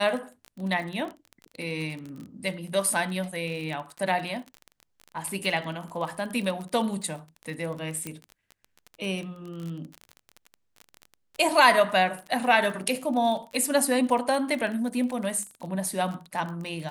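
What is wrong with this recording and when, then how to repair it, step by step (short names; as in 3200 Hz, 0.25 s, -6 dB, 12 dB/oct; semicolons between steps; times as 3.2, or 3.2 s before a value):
crackle 33/s -32 dBFS
8.07 pop -17 dBFS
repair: de-click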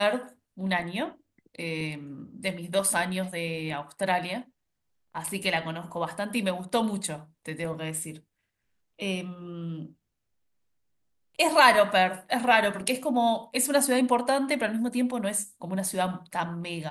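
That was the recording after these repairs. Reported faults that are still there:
none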